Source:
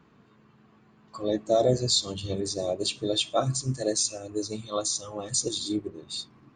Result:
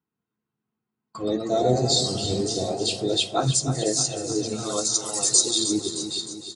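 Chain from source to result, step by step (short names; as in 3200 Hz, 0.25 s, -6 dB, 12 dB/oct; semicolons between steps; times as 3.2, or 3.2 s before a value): 4.94–5.64 tilt +3 dB/oct; gate -46 dBFS, range -33 dB; 3.42–3.85 high shelf 4700 Hz +8.5 dB; in parallel at -2 dB: compressor, threshold -33 dBFS, peak gain reduction 17.5 dB; on the sum: echoes that change speed 0.188 s, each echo +1 st, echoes 3, each echo -6 dB; notch comb 580 Hz; on a send: feedback echo 0.309 s, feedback 56%, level -10.5 dB; on the sum: gain +1 dB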